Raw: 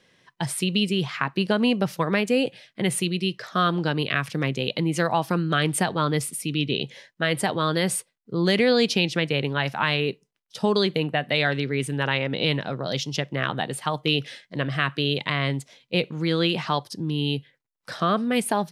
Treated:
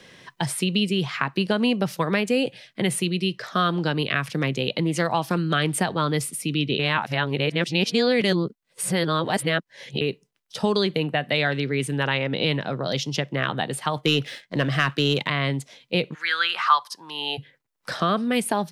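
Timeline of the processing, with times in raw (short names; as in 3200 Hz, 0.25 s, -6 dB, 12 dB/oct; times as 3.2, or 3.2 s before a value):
4.85–5.38 Doppler distortion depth 0.13 ms
6.79–10.01 reverse
13.96–15.28 sample leveller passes 1
16.13–17.37 resonant high-pass 1800 Hz -> 740 Hz, resonance Q 6.5
whole clip: three-band squash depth 40%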